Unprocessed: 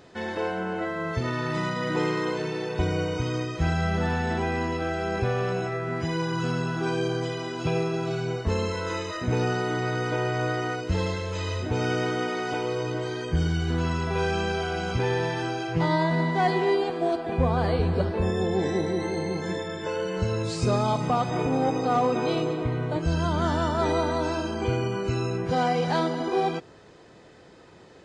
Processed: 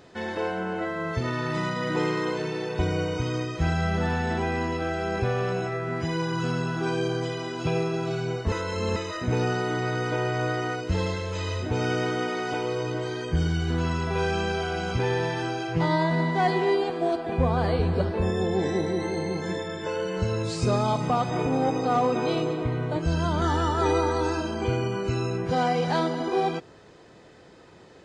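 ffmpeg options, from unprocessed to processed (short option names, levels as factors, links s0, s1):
-filter_complex "[0:a]asettb=1/sr,asplit=3[s0][s1][s2];[s0]atrim=end=23.414[s3];[s1]atrim=start=23.41:end=24.4,asetpts=PTS-STARTPTS,afade=t=in:d=0.004:c=qsin,afade=t=out:st=0.986:d=0.004:c=qsin,aecho=1:1:2.4:0.65,atrim=end_sample=43659[s4];[s2]atrim=start=24.396[s5];[s3][s4]acrossfade=d=0.004:c1=hsin:c2=qsin[s6];[s6][s5]acrossfade=d=0.004:c1=qsin:c2=hsin,asplit=3[s7][s8][s9];[s7]atrim=end=8.522[s10];[s8]atrim=start=8.518:end=8.962,asetpts=PTS-STARTPTS,areverse[s11];[s9]atrim=start=8.958[s12];[s10][s11]acrossfade=d=0.004:c1=hsin:c2=hsin[s13];[s13][s12]acrossfade=d=0.004:c1=hsin:c2=hsin"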